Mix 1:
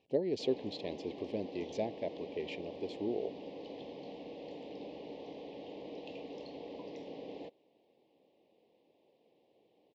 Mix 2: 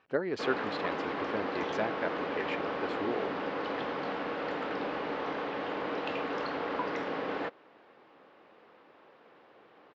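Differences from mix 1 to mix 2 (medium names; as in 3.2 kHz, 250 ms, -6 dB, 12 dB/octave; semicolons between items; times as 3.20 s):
background +9.0 dB; master: remove Butterworth band-stop 1.4 kHz, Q 0.62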